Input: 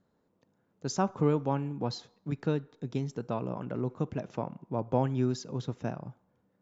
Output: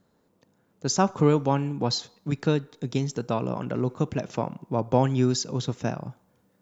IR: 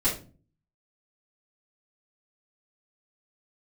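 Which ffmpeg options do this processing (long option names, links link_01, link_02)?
-af "asetnsamples=nb_out_samples=441:pad=0,asendcmd='0.99 highshelf g 11',highshelf=frequency=3300:gain=6,volume=6dB"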